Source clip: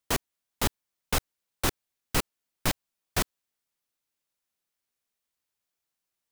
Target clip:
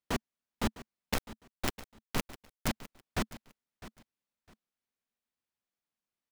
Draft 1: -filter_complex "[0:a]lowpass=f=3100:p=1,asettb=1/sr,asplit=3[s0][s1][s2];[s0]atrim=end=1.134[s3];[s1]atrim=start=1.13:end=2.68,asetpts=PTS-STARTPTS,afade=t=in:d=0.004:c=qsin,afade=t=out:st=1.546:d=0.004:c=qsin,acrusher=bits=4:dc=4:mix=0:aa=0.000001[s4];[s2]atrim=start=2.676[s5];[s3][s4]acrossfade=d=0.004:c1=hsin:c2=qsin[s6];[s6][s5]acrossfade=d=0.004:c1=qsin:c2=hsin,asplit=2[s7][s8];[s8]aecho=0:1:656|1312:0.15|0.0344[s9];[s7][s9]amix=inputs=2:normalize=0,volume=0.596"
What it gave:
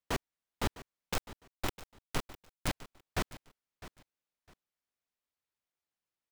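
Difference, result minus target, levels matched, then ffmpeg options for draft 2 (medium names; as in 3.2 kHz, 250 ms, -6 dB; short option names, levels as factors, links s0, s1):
250 Hz band -3.0 dB
-filter_complex "[0:a]lowpass=f=3100:p=1,equalizer=f=220:w=3.2:g=8.5,asettb=1/sr,asplit=3[s0][s1][s2];[s0]atrim=end=1.134[s3];[s1]atrim=start=1.13:end=2.68,asetpts=PTS-STARTPTS,afade=t=in:d=0.004:c=qsin,afade=t=out:st=1.546:d=0.004:c=qsin,acrusher=bits=4:dc=4:mix=0:aa=0.000001[s4];[s2]atrim=start=2.676[s5];[s3][s4]acrossfade=d=0.004:c1=hsin:c2=qsin[s6];[s6][s5]acrossfade=d=0.004:c1=qsin:c2=hsin,asplit=2[s7][s8];[s8]aecho=0:1:656|1312:0.15|0.0344[s9];[s7][s9]amix=inputs=2:normalize=0,volume=0.596"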